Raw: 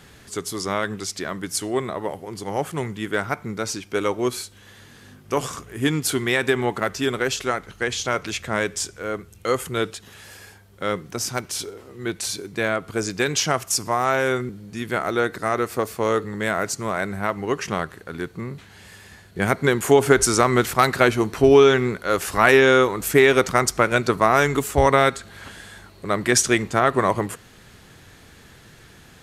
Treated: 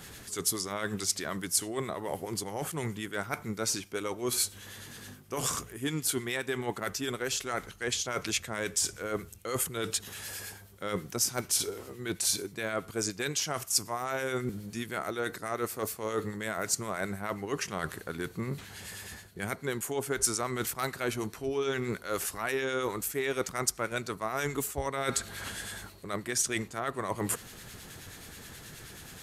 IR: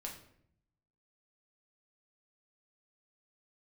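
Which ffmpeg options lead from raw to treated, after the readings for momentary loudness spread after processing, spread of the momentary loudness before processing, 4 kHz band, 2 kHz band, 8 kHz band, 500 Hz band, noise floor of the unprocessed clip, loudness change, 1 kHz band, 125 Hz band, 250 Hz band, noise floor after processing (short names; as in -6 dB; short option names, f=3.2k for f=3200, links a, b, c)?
12 LU, 15 LU, -7.0 dB, -12.5 dB, -3.5 dB, -14.0 dB, -49 dBFS, -11.0 dB, -13.5 dB, -11.0 dB, -11.5 dB, -51 dBFS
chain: -filter_complex "[0:a]areverse,acompressor=threshold=-30dB:ratio=6,areverse,acrossover=split=1400[a][b];[a]aeval=exprs='val(0)*(1-0.5/2+0.5/2*cos(2*PI*9.4*n/s))':c=same[c];[b]aeval=exprs='val(0)*(1-0.5/2-0.5/2*cos(2*PI*9.4*n/s))':c=same[d];[c][d]amix=inputs=2:normalize=0,highshelf=f=6.1k:g=11,volume=1.5dB"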